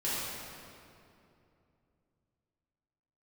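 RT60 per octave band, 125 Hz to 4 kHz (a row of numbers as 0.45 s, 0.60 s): 3.8 s, 3.3 s, 2.9 s, 2.5 s, 2.1 s, 1.8 s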